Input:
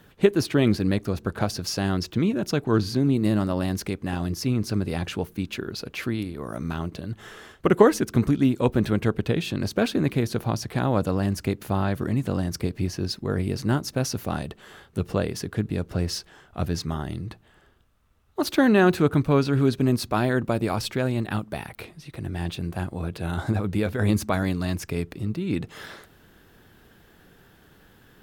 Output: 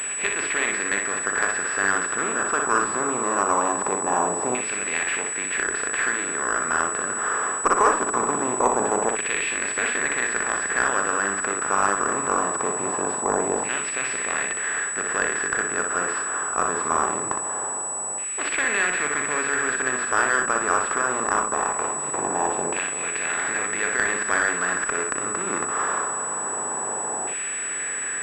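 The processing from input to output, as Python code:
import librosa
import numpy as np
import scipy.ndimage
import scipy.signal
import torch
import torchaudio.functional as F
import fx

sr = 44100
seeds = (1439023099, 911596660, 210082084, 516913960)

p1 = fx.bin_compress(x, sr, power=0.4)
p2 = fx.filter_lfo_bandpass(p1, sr, shape='saw_down', hz=0.22, low_hz=840.0, high_hz=2400.0, q=3.1)
p3 = fx.cheby_harmonics(p2, sr, harmonics=(6, 8), levels_db=(-26, -23), full_scale_db=-0.5)
p4 = p3 + fx.room_early_taps(p3, sr, ms=(40, 61), db=(-10.5, -5.0), dry=0)
p5 = fx.pwm(p4, sr, carrier_hz=7900.0)
y = F.gain(torch.from_numpy(p5), 5.0).numpy()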